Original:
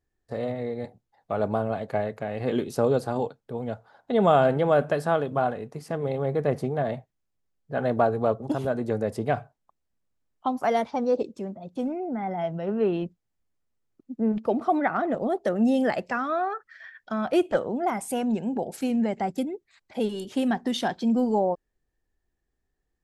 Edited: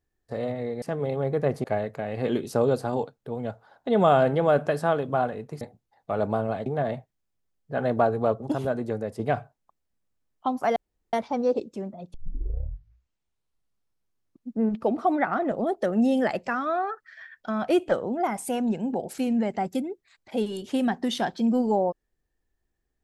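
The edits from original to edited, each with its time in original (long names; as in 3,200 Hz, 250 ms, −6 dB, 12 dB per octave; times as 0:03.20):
0:00.82–0:01.87: swap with 0:05.84–0:06.66
0:08.68–0:09.19: fade out, to −6.5 dB
0:10.76: splice in room tone 0.37 s
0:11.77: tape start 2.44 s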